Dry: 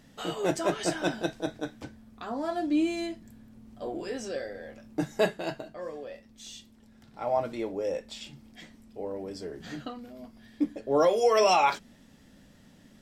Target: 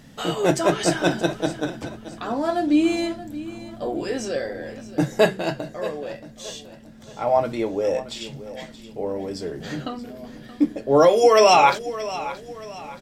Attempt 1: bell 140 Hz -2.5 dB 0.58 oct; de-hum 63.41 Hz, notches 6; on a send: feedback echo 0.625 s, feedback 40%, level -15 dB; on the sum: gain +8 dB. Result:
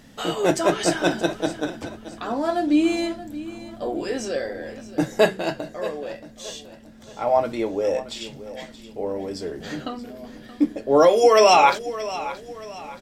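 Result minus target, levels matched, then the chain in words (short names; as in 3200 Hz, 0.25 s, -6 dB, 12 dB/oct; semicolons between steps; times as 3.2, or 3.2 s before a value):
125 Hz band -4.5 dB
bell 140 Hz +4.5 dB 0.58 oct; de-hum 63.41 Hz, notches 6; on a send: feedback echo 0.625 s, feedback 40%, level -15 dB; on the sum: gain +8 dB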